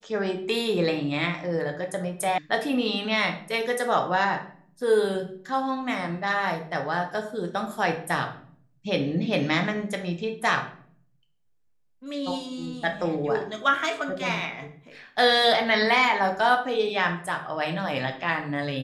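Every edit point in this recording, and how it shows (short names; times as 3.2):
2.38 sound cut off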